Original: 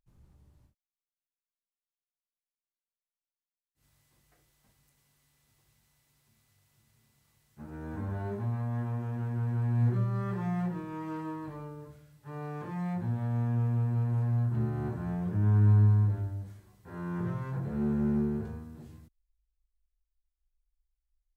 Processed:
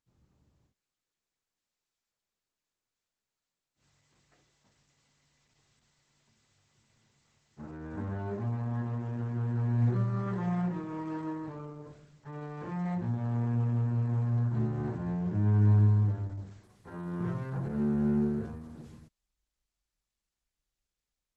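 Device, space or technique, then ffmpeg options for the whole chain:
video call: -filter_complex "[0:a]asettb=1/sr,asplit=3[link_01][link_02][link_03];[link_01]atrim=end=14.954[link_04];[link_02]atrim=start=14.95:end=16.07,asetpts=PTS-STARTPTS,afade=type=in:duration=0.004:curve=qsin,afade=type=out:start_time=1.116:duration=0.004:curve=qsin,bandreject=frequency=1300:width=5.2[link_05];[link_03]atrim=start=16.066[link_06];[link_04][link_05]acrossfade=duration=0.004:curve1=hsin:curve2=qsin[link_07];[link_07][link_06]acrossfade=duration=0.004:curve1=qsin:curve2=hsin,highpass=frequency=130:poles=1,dynaudnorm=framelen=650:gausssize=3:maxgain=6dB,volume=-3dB" -ar 48000 -c:a libopus -b:a 12k

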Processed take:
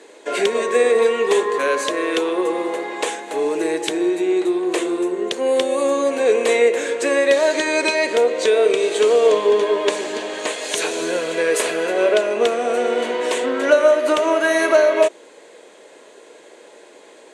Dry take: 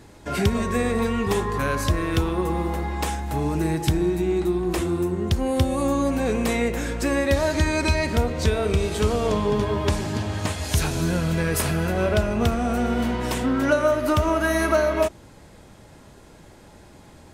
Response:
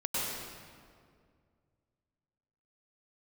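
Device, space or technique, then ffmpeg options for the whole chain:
phone speaker on a table: -af "highpass=frequency=380:width=0.5412,highpass=frequency=380:width=1.3066,equalizer=frequency=460:width_type=q:width=4:gain=6,equalizer=frequency=820:width_type=q:width=4:gain=-7,equalizer=frequency=1300:width_type=q:width=4:gain=-7,equalizer=frequency=5200:width_type=q:width=4:gain=-9,lowpass=frequency=8900:width=0.5412,lowpass=frequency=8900:width=1.3066,volume=7.5dB"

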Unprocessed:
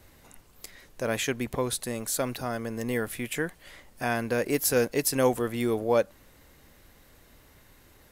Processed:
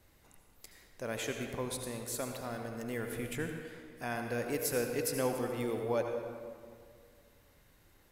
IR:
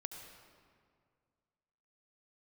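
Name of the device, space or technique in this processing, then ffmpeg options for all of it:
stairwell: -filter_complex "[1:a]atrim=start_sample=2205[link_01];[0:a][link_01]afir=irnorm=-1:irlink=0,asettb=1/sr,asplit=3[link_02][link_03][link_04];[link_02]atrim=end=3.124[link_05];[link_03]atrim=start=3.12:end=3.61,asetpts=PTS-STARTPTS,afade=type=in:duration=0.004:curve=qsin,afade=type=out:start_time=0.486:duration=0.004:curve=qsin,lowshelf=frequency=160:gain=9[link_06];[link_04]atrim=start=3.606[link_07];[link_05][link_06]acrossfade=duration=0.004:curve1=hsin:curve2=qsin[link_08];[link_08][link_07]acrossfade=duration=0.004:curve1=qsin:curve2=hsin,volume=-5.5dB"

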